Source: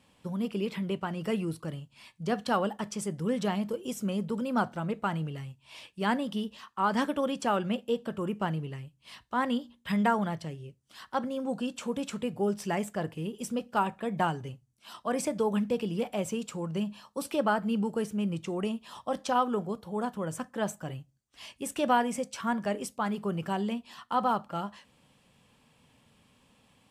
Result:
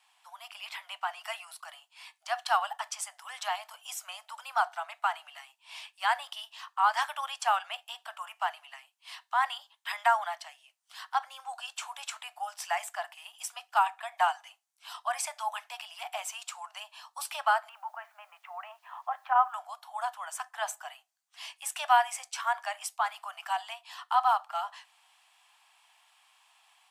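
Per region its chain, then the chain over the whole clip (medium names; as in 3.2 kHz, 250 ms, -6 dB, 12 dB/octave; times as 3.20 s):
17.69–19.54 s: low-pass 2 kHz 24 dB/octave + word length cut 12-bit, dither none
whole clip: steep high-pass 680 Hz 96 dB/octave; level rider gain up to 3.5 dB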